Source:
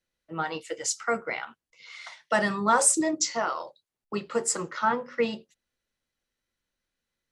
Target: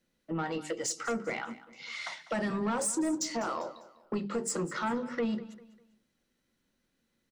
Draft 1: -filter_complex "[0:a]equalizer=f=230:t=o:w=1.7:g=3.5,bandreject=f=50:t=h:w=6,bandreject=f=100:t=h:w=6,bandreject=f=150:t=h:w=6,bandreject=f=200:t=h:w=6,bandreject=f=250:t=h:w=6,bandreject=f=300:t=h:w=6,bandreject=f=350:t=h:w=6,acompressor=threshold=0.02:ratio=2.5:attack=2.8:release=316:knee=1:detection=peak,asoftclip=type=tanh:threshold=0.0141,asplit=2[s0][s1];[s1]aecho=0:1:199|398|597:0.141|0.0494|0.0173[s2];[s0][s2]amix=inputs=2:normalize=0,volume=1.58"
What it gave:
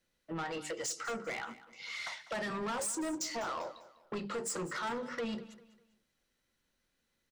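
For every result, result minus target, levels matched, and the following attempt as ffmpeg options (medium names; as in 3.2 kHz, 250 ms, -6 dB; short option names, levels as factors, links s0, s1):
saturation: distortion +7 dB; 250 Hz band -3.5 dB
-filter_complex "[0:a]equalizer=f=230:t=o:w=1.7:g=3.5,bandreject=f=50:t=h:w=6,bandreject=f=100:t=h:w=6,bandreject=f=150:t=h:w=6,bandreject=f=200:t=h:w=6,bandreject=f=250:t=h:w=6,bandreject=f=300:t=h:w=6,bandreject=f=350:t=h:w=6,acompressor=threshold=0.02:ratio=2.5:attack=2.8:release=316:knee=1:detection=peak,asoftclip=type=tanh:threshold=0.0376,asplit=2[s0][s1];[s1]aecho=0:1:199|398|597:0.141|0.0494|0.0173[s2];[s0][s2]amix=inputs=2:normalize=0,volume=1.58"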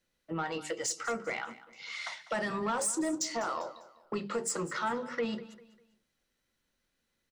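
250 Hz band -3.5 dB
-filter_complex "[0:a]equalizer=f=230:t=o:w=1.7:g=12.5,bandreject=f=50:t=h:w=6,bandreject=f=100:t=h:w=6,bandreject=f=150:t=h:w=6,bandreject=f=200:t=h:w=6,bandreject=f=250:t=h:w=6,bandreject=f=300:t=h:w=6,bandreject=f=350:t=h:w=6,acompressor=threshold=0.02:ratio=2.5:attack=2.8:release=316:knee=1:detection=peak,asoftclip=type=tanh:threshold=0.0376,asplit=2[s0][s1];[s1]aecho=0:1:199|398|597:0.141|0.0494|0.0173[s2];[s0][s2]amix=inputs=2:normalize=0,volume=1.58"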